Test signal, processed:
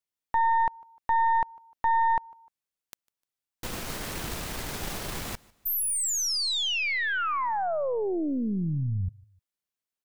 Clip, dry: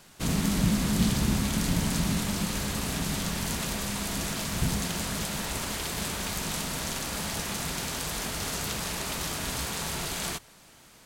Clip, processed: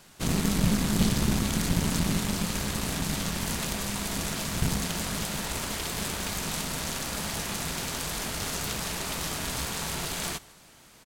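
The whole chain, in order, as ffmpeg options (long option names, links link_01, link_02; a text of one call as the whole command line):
ffmpeg -i in.wav -af "aecho=1:1:151|302:0.0631|0.0246,aeval=exprs='0.251*(cos(1*acos(clip(val(0)/0.251,-1,1)))-cos(1*PI/2))+0.0355*(cos(6*acos(clip(val(0)/0.251,-1,1)))-cos(6*PI/2))+0.01*(cos(8*acos(clip(val(0)/0.251,-1,1)))-cos(8*PI/2))':channel_layout=same" out.wav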